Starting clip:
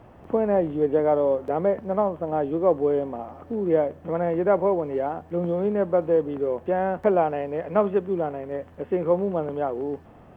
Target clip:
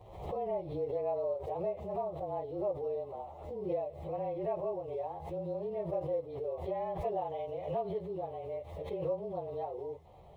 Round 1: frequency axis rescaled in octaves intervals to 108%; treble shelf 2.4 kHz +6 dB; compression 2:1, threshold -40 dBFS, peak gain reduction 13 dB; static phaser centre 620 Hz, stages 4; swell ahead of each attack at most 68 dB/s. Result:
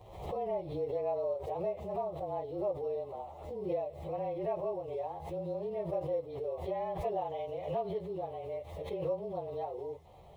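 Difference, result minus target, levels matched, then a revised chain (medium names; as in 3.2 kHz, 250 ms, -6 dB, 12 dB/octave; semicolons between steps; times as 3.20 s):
4 kHz band +3.5 dB
frequency axis rescaled in octaves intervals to 108%; compression 2:1, threshold -40 dBFS, peak gain reduction 13 dB; static phaser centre 620 Hz, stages 4; swell ahead of each attack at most 68 dB/s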